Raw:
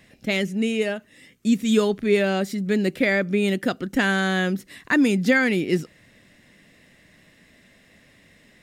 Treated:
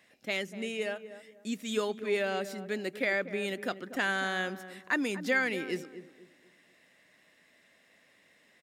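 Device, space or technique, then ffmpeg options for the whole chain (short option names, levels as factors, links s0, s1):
filter by subtraction: -filter_complex "[0:a]asplit=2[s0][s1];[s1]lowpass=790,volume=-1[s2];[s0][s2]amix=inputs=2:normalize=0,asplit=2[s3][s4];[s4]adelay=243,lowpass=f=1000:p=1,volume=0.282,asplit=2[s5][s6];[s6]adelay=243,lowpass=f=1000:p=1,volume=0.34,asplit=2[s7][s8];[s8]adelay=243,lowpass=f=1000:p=1,volume=0.34,asplit=2[s9][s10];[s10]adelay=243,lowpass=f=1000:p=1,volume=0.34[s11];[s3][s5][s7][s9][s11]amix=inputs=5:normalize=0,volume=0.376"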